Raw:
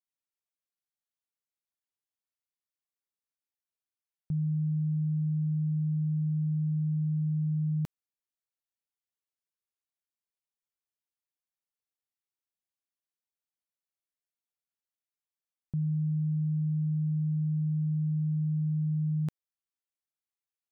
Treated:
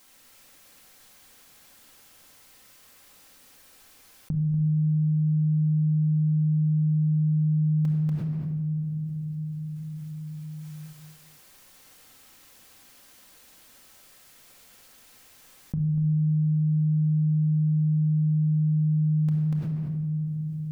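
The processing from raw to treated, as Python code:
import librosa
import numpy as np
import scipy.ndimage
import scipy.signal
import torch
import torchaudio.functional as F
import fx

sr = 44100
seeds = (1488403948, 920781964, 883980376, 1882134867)

y = fx.rider(x, sr, range_db=10, speed_s=0.5)
y = y + 10.0 ** (-5.0 / 20.0) * np.pad(y, (int(240 * sr / 1000.0), 0))[:len(y)]
y = fx.room_shoebox(y, sr, seeds[0], volume_m3=2400.0, walls='mixed', distance_m=2.1)
y = fx.env_flatten(y, sr, amount_pct=70)
y = y * 10.0 ** (-3.0 / 20.0)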